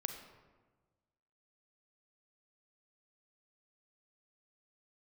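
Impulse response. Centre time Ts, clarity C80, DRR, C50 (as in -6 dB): 26 ms, 8.5 dB, 5.5 dB, 7.0 dB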